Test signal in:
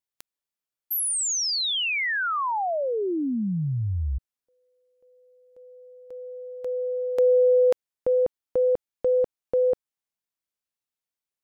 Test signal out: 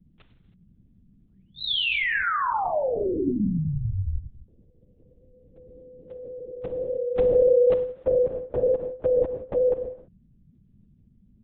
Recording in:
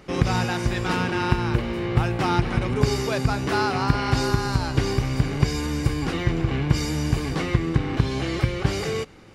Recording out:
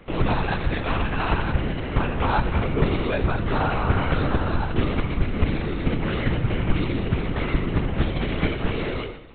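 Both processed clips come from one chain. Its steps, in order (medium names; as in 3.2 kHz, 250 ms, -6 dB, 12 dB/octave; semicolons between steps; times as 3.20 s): gated-style reverb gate 350 ms falling, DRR 6 dB; band noise 56–220 Hz -57 dBFS; LPC vocoder at 8 kHz whisper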